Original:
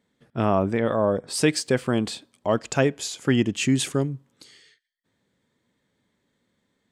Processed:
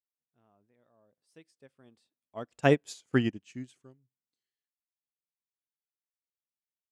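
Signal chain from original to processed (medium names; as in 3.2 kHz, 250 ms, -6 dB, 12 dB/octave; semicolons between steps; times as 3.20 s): Doppler pass-by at 2.90 s, 17 m/s, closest 3.8 m; upward expansion 2.5:1, over -39 dBFS; trim +2 dB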